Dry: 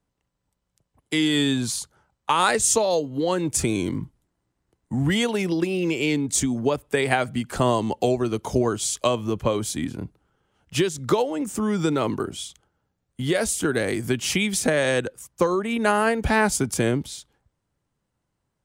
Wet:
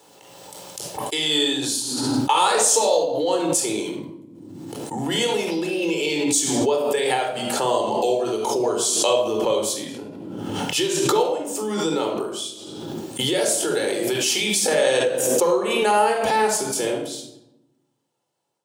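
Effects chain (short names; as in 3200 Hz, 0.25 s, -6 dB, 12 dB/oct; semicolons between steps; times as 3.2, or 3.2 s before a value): band shelf 1600 Hz -8 dB 1.3 oct; shoebox room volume 2000 m³, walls furnished, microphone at 4.2 m; AGC gain up to 5.5 dB; HPF 510 Hz 12 dB/oct; backwards sustainer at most 26 dB/s; gain -2.5 dB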